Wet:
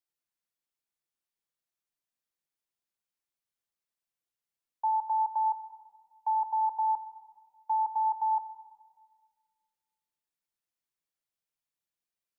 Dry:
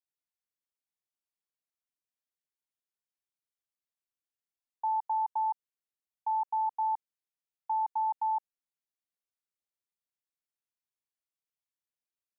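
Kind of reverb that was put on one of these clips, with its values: simulated room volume 2800 m³, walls mixed, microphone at 0.8 m; trim +1 dB

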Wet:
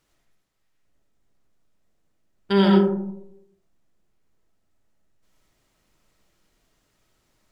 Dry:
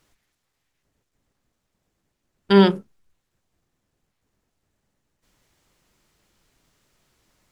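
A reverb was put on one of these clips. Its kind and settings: algorithmic reverb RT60 0.81 s, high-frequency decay 0.3×, pre-delay 40 ms, DRR -1 dB; trim -5.5 dB

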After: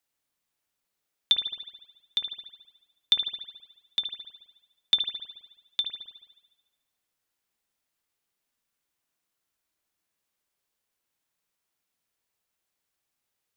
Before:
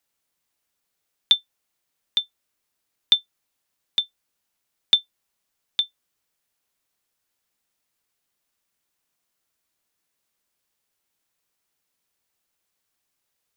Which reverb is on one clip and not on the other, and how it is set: spring tank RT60 1.1 s, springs 53 ms, chirp 25 ms, DRR 3.5 dB; trim -5 dB

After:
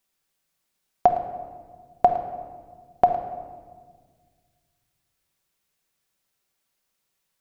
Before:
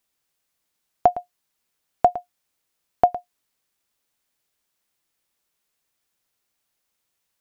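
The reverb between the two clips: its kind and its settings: simulated room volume 1900 m³, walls mixed, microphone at 1.1 m; trim -1 dB

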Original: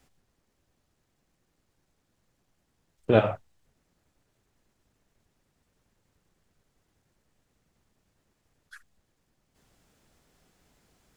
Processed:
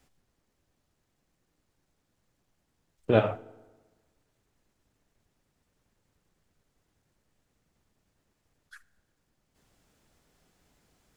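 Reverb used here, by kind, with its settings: FDN reverb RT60 1.3 s, low-frequency decay 1×, high-frequency decay 0.65×, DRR 18.5 dB; trim -2 dB

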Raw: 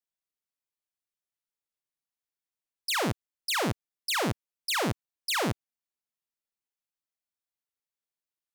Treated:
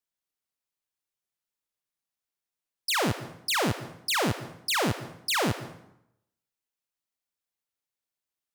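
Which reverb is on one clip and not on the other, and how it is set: plate-style reverb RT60 0.79 s, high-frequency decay 0.75×, pre-delay 110 ms, DRR 13 dB; trim +2 dB

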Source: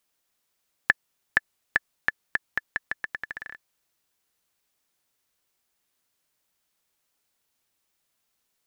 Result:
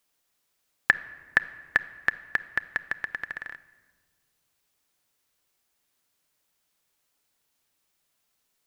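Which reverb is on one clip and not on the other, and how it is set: simulated room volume 1700 m³, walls mixed, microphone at 0.35 m; trim +1 dB

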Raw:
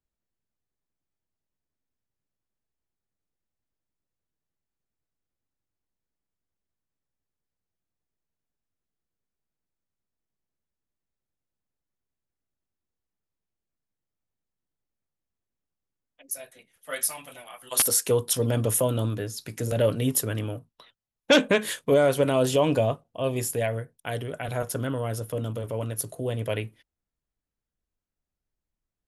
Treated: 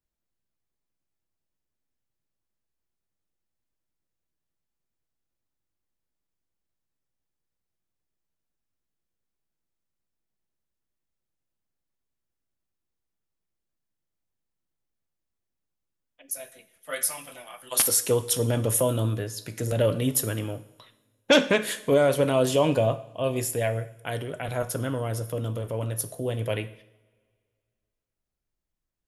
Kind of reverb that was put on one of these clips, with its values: two-slope reverb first 0.69 s, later 2.2 s, from -21 dB, DRR 11 dB

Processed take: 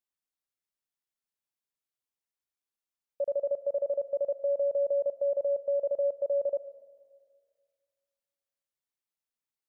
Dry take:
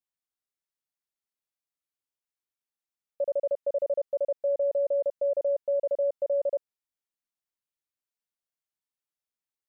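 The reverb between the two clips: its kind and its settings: algorithmic reverb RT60 1.9 s, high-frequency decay 0.9×, pre-delay 60 ms, DRR 15.5 dB; trim -2 dB

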